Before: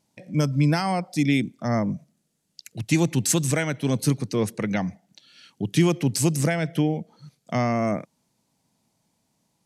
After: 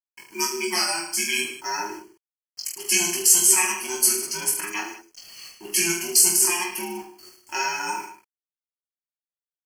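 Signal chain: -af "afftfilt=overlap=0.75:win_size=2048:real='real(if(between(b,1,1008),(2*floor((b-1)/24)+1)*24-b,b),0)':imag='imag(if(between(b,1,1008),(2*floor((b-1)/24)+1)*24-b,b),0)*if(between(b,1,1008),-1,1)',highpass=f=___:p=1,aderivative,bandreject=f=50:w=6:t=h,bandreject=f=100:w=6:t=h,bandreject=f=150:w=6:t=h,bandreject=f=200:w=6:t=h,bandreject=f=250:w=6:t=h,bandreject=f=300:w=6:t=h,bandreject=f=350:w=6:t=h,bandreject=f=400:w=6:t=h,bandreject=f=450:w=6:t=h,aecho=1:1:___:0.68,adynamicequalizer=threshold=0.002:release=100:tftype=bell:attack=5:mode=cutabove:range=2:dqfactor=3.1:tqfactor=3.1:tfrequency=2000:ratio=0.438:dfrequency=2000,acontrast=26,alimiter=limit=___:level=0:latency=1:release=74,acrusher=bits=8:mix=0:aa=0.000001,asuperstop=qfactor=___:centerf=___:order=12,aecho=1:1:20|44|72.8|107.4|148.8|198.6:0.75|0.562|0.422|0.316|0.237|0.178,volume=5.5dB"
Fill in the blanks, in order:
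120, 5.4, -12dB, 3.9, 3700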